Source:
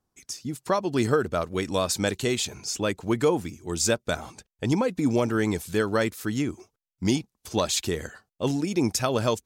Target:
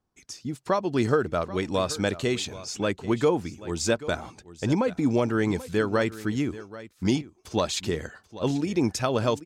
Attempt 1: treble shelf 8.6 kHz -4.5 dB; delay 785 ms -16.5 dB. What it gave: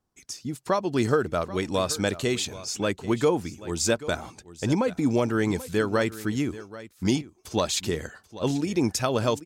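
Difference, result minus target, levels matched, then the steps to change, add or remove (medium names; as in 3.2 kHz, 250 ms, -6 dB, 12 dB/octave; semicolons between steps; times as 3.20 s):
8 kHz band +3.5 dB
change: treble shelf 8.6 kHz -15 dB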